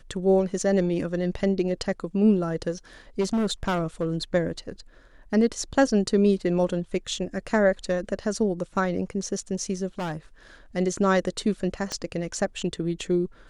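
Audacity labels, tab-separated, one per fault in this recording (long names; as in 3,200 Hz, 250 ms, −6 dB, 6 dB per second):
3.200000	4.150000	clipping −20.5 dBFS
9.990000	10.170000	clipping −27 dBFS
11.920000	11.920000	click −16 dBFS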